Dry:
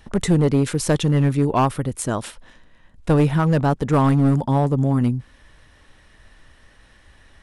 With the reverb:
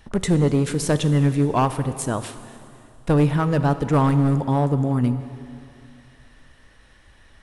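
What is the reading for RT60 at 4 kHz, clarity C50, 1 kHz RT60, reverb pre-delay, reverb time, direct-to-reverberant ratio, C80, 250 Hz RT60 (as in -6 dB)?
2.4 s, 11.5 dB, 2.6 s, 4 ms, 2.6 s, 10.5 dB, 12.5 dB, 2.6 s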